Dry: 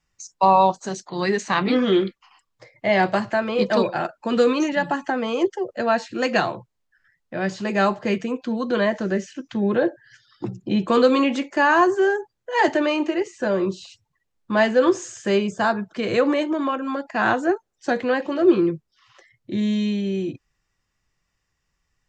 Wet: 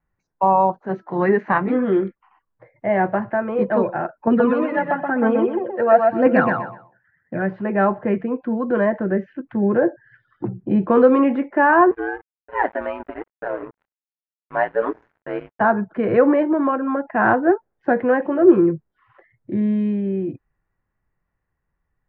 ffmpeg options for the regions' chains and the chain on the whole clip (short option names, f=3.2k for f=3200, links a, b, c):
-filter_complex "[0:a]asettb=1/sr,asplit=3[a][b][c];[a]atrim=end=0.894[d];[b]atrim=start=0.89:end=1.58,asetpts=PTS-STARTPTS,afade=t=in:d=0.004:c=qsin,afade=t=out:st=0.686:d=0.004:c=qsin,bandreject=f=328.8:t=h:w=4,bandreject=f=657.6:t=h:w=4,bandreject=f=986.4:t=h:w=4,bandreject=f=1.3152k:t=h:w=4,bandreject=f=1.644k:t=h:w=4,acontrast=68,lowshelf=f=94:g=-9.5[e];[c]atrim=start=1.576[f];[d][e]acrossfade=d=0.004:c1=hsin:c2=qsin[g];[g][f]acrossfade=d=0.004:c1=qsin:c2=hsin,asettb=1/sr,asplit=3[h][i][j];[h]atrim=end=4.274[k];[i]atrim=start=4.27:end=7.42,asetpts=PTS-STARTPTS,afade=t=in:d=0.004:c=qsin,afade=t=out:st=3.146:d=0.004:c=qsin,aphaser=in_gain=1:out_gain=1:delay=2.3:decay=0.64:speed=1:type=triangular,highpass=110,aecho=1:1:126|252|378:0.631|0.145|0.0334,atrim=end_sample=138915[l];[j]atrim=start=7.416[m];[k][l]acrossfade=d=0.004:c1=hsin:c2=qsin[n];[n][m]acrossfade=d=0.004:c1=qsin:c2=hsin,asettb=1/sr,asplit=3[o][p][q];[o]atrim=end=11.914[r];[p]atrim=start=11.91:end=15.61,asetpts=PTS-STARTPTS,afade=t=in:d=0.004:c=qsin,afade=t=out:st=3.696:d=0.004:c=qsin,highpass=550,aeval=exprs='sgn(val(0))*max(abs(val(0))-0.0188,0)':c=same,aeval=exprs='val(0)*sin(2*PI*58*n/s)':c=same[s];[q]atrim=start=15.606[t];[r][s]acrossfade=d=0.004:c1=hsin:c2=qsin[u];[u][t]acrossfade=d=0.004:c1=qsin:c2=hsin,dynaudnorm=f=900:g=9:m=11.5dB,lowpass=f=1.7k:w=0.5412,lowpass=f=1.7k:w=1.3066,equalizer=f=1.2k:t=o:w=0.24:g=-5"